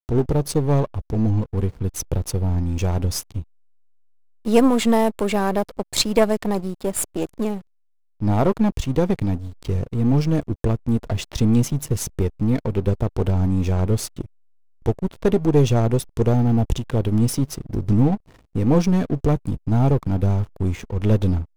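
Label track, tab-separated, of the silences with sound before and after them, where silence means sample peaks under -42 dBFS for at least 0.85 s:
3.430000	4.450000	silence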